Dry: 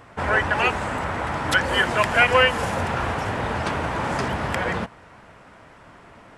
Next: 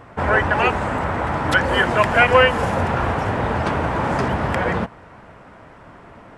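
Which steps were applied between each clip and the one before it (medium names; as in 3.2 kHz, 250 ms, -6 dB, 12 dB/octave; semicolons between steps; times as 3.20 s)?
treble shelf 2.2 kHz -9.5 dB; trim +5.5 dB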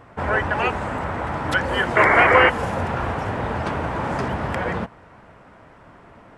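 painted sound noise, 1.96–2.50 s, 290–2300 Hz -12 dBFS; trim -4 dB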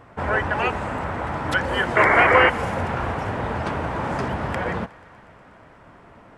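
thinning echo 121 ms, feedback 81%, high-pass 520 Hz, level -22.5 dB; trim -1 dB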